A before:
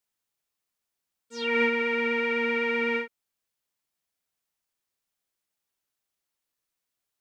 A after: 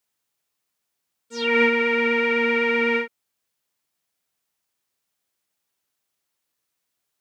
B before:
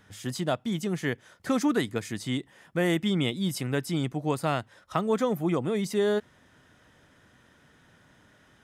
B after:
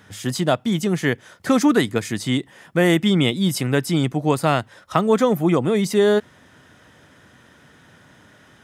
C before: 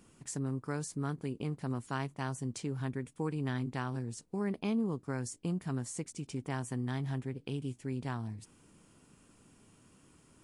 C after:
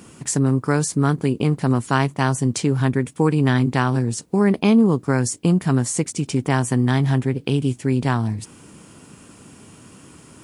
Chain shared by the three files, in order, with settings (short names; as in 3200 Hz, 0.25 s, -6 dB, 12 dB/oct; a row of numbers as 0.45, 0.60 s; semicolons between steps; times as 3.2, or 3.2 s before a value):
HPF 68 Hz; match loudness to -20 LUFS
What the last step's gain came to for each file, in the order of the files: +5.5, +9.0, +17.5 dB